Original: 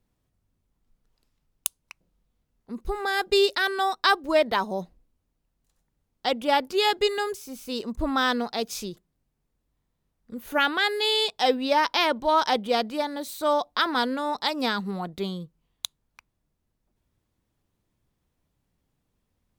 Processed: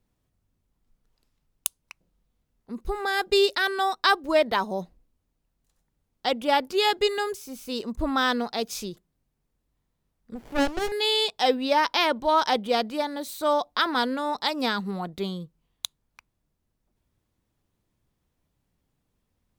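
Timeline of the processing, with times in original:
10.35–10.92 s: sliding maximum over 33 samples

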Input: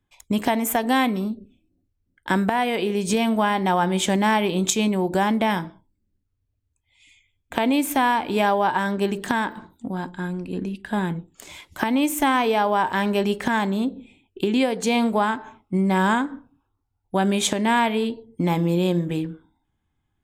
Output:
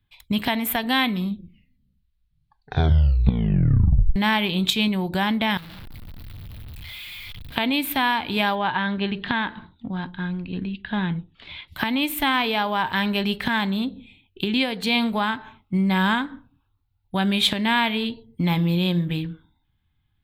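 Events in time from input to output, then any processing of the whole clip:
1.07 s: tape stop 3.09 s
5.57–7.56 s: one-bit comparator
8.55–11.68 s: low-pass 3.9 kHz 24 dB/octave
whole clip: FFT filter 130 Hz 0 dB, 360 Hz -12 dB, 530 Hz -12 dB, 4.1 kHz +3 dB, 6.5 kHz -19 dB, 14 kHz -1 dB; trim +5 dB

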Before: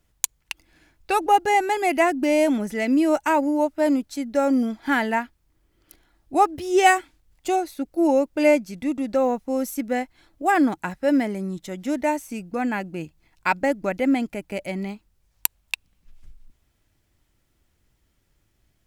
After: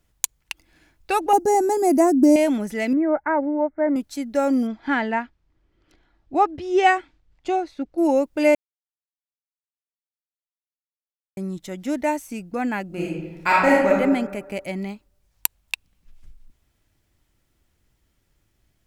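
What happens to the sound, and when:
1.33–2.36 s: FFT filter 130 Hz 0 dB, 220 Hz +12 dB, 1.1 kHz -4 dB, 3 kHz -21 dB, 5.5 kHz +5 dB
2.93–3.96 s: rippled Chebyshev low-pass 2.2 kHz, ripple 3 dB
4.67–7.98 s: distance through air 140 m
8.55–11.37 s: mute
12.86–13.90 s: reverb throw, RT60 1.2 s, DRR -5.5 dB

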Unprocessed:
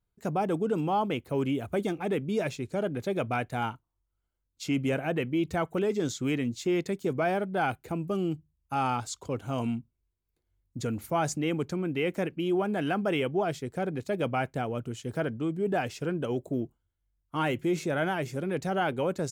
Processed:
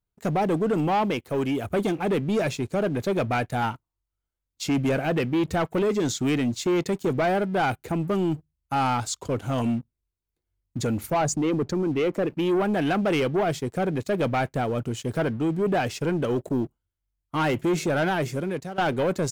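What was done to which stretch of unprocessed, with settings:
1.11–1.65 s: bass shelf 360 Hz -5.5 dB
11.14–12.30 s: resonances exaggerated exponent 1.5
18.24–18.78 s: fade out, to -19.5 dB
whole clip: waveshaping leveller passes 2

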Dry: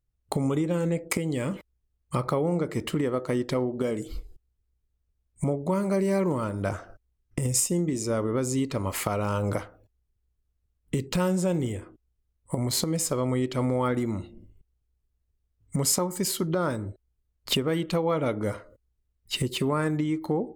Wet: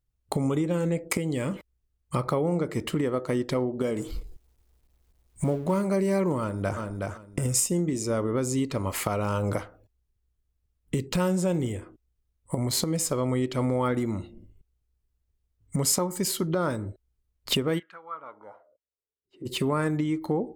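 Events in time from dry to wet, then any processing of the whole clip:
3.96–5.82 s: companding laws mixed up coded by mu
6.39–6.80 s: echo throw 370 ms, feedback 20%, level -3.5 dB
17.78–19.45 s: band-pass filter 1.8 kHz -> 310 Hz, Q 6.6

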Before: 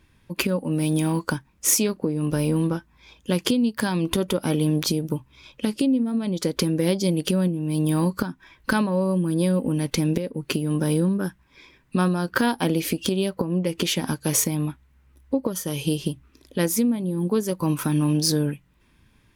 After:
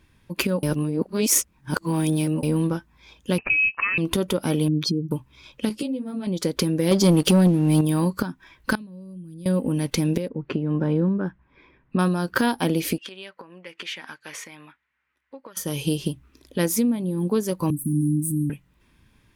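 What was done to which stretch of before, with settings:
0.63–2.43 s: reverse
3.38–3.98 s: frequency inversion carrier 2.8 kHz
4.68–5.11 s: spectral contrast enhancement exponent 2
5.69–6.27 s: three-phase chorus
6.91–7.81 s: waveshaping leveller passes 2
8.75–9.46 s: amplifier tone stack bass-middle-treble 10-0-1
10.28–11.99 s: low-pass 1.8 kHz
12.98–15.57 s: band-pass filter 1.9 kHz, Q 1.8
17.70–18.50 s: Chebyshev band-stop 300–8200 Hz, order 5

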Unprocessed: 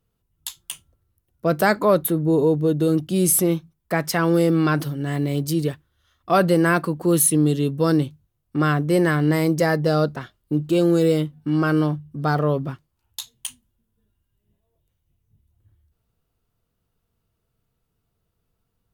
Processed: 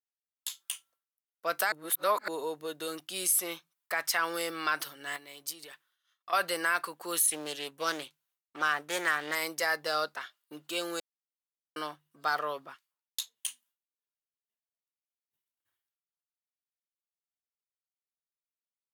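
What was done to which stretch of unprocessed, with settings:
1.72–2.28 s: reverse
5.16–6.33 s: compression 4:1, threshold -29 dBFS
7.27–9.35 s: loudspeaker Doppler distortion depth 0.3 ms
11.00–11.76 s: mute
12.65–13.46 s: harmonic tremolo 3 Hz, crossover 1.3 kHz
whole clip: expander -56 dBFS; high-pass 1.2 kHz 12 dB/octave; peak limiter -17 dBFS

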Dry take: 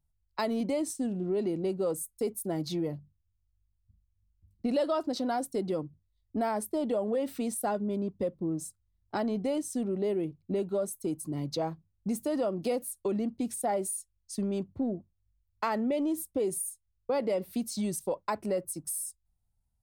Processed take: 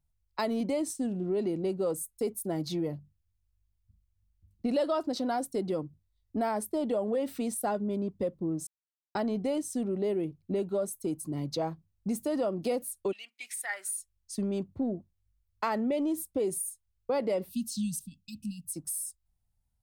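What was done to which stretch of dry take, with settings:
8.67–9.15 s: mute
13.11–13.99 s: resonant high-pass 2.9 kHz -> 1.4 kHz, resonance Q 6.2
17.49–18.71 s: brick-wall FIR band-stop 270–2500 Hz

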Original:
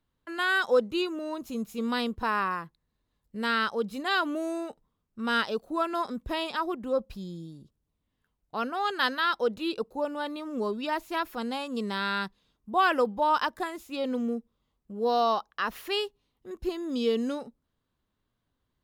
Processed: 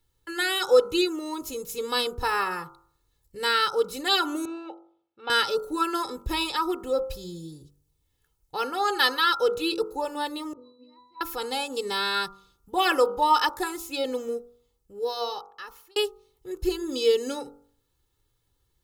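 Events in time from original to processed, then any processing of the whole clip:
4.45–5.30 s: cabinet simulation 370–3300 Hz, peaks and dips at 440 Hz -6 dB, 740 Hz +6 dB, 1.1 kHz -7 dB, 1.9 kHz -9 dB
10.53–11.21 s: pitch-class resonator B, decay 0.79 s
14.37–15.96 s: fade out
whole clip: tone controls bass +4 dB, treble +11 dB; comb 2.3 ms, depth 99%; de-hum 47.95 Hz, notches 31

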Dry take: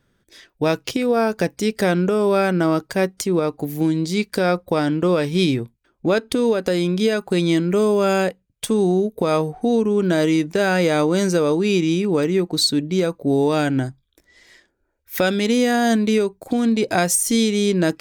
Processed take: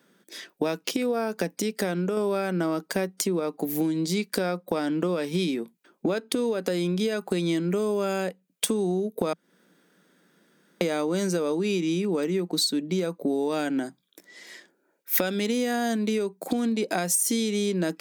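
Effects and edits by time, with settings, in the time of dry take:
1.62–2.17 s: gain -5 dB
9.33–10.81 s: room tone
whole clip: elliptic high-pass 170 Hz; compression 6:1, threshold -29 dBFS; treble shelf 9.2 kHz +6.5 dB; trim +5 dB

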